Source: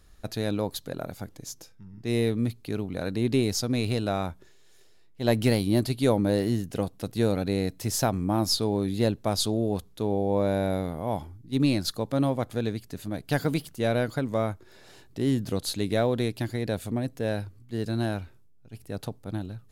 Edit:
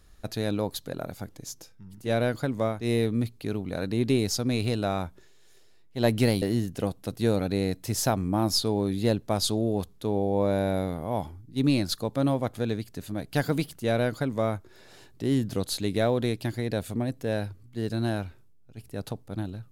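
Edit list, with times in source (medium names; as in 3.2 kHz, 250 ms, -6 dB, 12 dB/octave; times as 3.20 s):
5.66–6.38 s: delete
13.75–14.51 s: copy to 2.01 s, crossfade 0.24 s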